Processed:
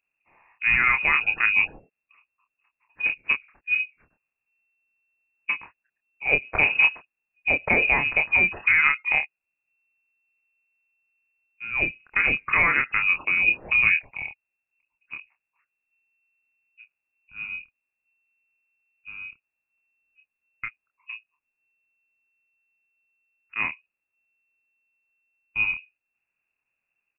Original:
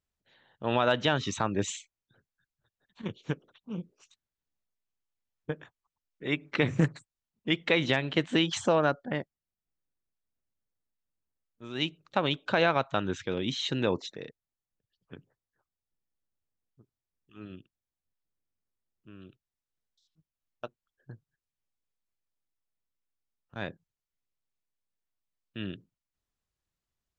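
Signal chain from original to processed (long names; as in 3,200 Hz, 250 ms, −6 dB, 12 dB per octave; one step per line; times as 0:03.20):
parametric band 220 Hz +10 dB 0.63 octaves
brickwall limiter −14 dBFS, peak gain reduction 5 dB
double-tracking delay 27 ms −5 dB
voice inversion scrambler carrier 2,700 Hz
level +4.5 dB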